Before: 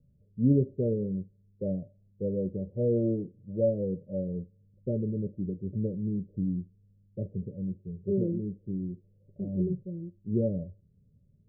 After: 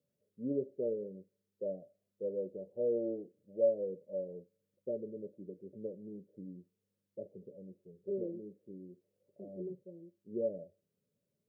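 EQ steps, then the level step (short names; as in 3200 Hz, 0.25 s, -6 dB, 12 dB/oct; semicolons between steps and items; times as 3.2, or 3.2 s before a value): HPF 600 Hz 12 dB/oct; +1.5 dB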